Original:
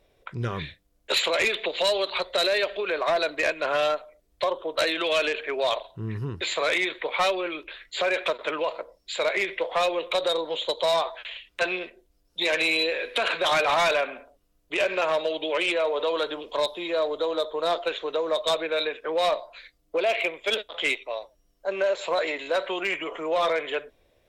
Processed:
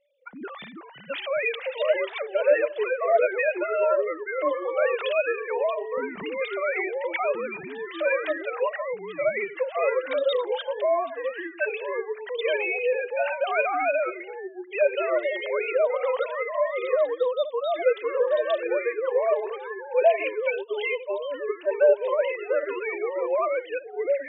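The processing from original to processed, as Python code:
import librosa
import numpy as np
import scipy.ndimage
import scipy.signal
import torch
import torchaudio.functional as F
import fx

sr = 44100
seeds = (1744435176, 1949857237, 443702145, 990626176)

y = fx.sine_speech(x, sr)
y = fx.echo_pitch(y, sr, ms=243, semitones=-3, count=2, db_per_echo=-6.0)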